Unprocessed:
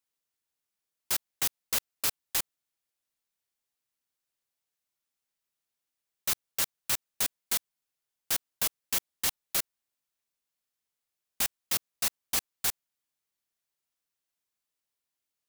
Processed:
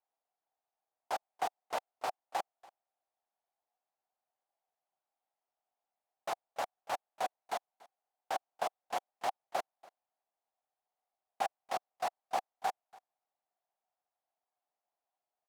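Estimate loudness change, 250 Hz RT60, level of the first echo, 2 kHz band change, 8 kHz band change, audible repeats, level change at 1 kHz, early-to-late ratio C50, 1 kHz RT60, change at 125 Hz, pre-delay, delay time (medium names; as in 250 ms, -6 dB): -9.5 dB, no reverb, -23.0 dB, -6.5 dB, -21.0 dB, 1, +9.0 dB, no reverb, no reverb, under -10 dB, no reverb, 286 ms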